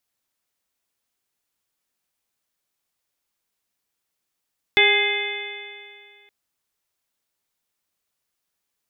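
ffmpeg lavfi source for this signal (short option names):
-f lavfi -i "aevalsrc='0.1*pow(10,-3*t/2.21)*sin(2*PI*406.49*t)+0.0596*pow(10,-3*t/2.21)*sin(2*PI*815.89*t)+0.0126*pow(10,-3*t/2.21)*sin(2*PI*1231.08*t)+0.0631*pow(10,-3*t/2.21)*sin(2*PI*1654.89*t)+0.2*pow(10,-3*t/2.21)*sin(2*PI*2090.01*t)+0.0891*pow(10,-3*t/2.21)*sin(2*PI*2539.06*t)+0.0355*pow(10,-3*t/2.21)*sin(2*PI*3004.47*t)+0.133*pow(10,-3*t/2.21)*sin(2*PI*3488.54*t)':d=1.52:s=44100"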